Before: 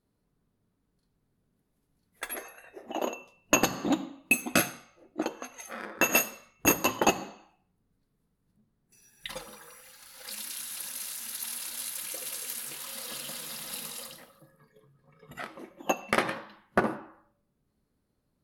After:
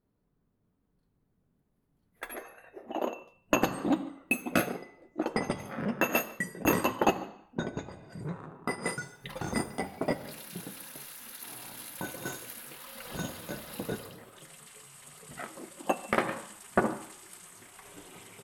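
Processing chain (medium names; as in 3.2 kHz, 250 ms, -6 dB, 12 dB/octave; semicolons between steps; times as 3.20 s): peaking EQ 6.9 kHz -12 dB 2.2 oct; ever faster or slower copies 648 ms, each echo -5 st, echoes 2, each echo -6 dB; echo from a far wall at 25 m, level -22 dB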